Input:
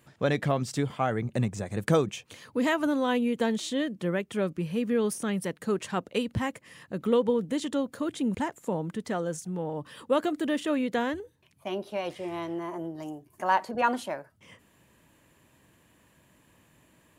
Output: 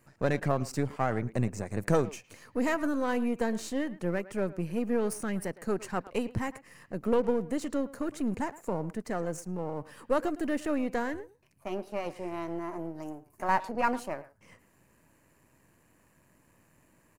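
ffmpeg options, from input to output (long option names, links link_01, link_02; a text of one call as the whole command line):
ffmpeg -i in.wav -filter_complex "[0:a]aeval=exprs='if(lt(val(0),0),0.447*val(0),val(0))':channel_layout=same,equalizer=frequency=3400:width_type=o:width=0.38:gain=-14,asplit=2[link_01][link_02];[link_02]adelay=110,highpass=300,lowpass=3400,asoftclip=type=hard:threshold=-21.5dB,volume=-17dB[link_03];[link_01][link_03]amix=inputs=2:normalize=0" out.wav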